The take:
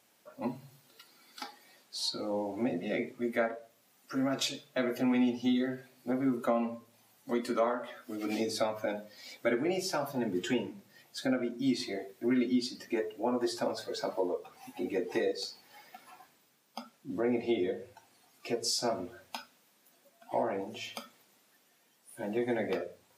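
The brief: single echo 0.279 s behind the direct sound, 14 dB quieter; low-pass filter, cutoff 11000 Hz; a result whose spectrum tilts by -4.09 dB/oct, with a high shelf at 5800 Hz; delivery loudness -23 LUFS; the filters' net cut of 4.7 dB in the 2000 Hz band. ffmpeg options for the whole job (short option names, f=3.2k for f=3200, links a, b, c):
-af "lowpass=11k,equalizer=f=2k:t=o:g=-6.5,highshelf=f=5.8k:g=4.5,aecho=1:1:279:0.2,volume=10.5dB"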